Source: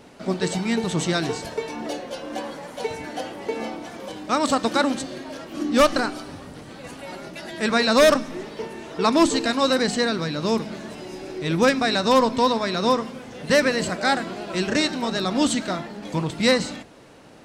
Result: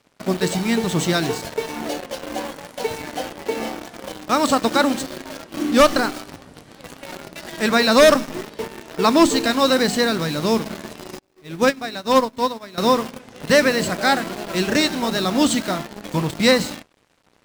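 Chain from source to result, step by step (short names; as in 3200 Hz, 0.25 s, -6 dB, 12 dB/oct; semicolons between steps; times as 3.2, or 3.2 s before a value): in parallel at -3.5 dB: bit-crush 5-bit; on the sum: crossover distortion -45.5 dBFS; 11.19–12.78 upward expander 2.5:1, over -31 dBFS; gain -1 dB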